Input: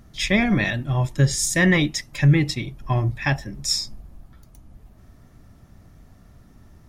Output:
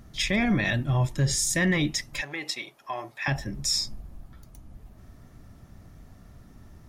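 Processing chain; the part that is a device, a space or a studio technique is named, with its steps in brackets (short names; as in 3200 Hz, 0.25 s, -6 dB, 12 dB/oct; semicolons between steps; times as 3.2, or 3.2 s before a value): clipper into limiter (hard clip -9 dBFS, distortion -28 dB; limiter -16 dBFS, peak gain reduction 7 dB); 2.21–3.28 Chebyshev high-pass 660 Hz, order 2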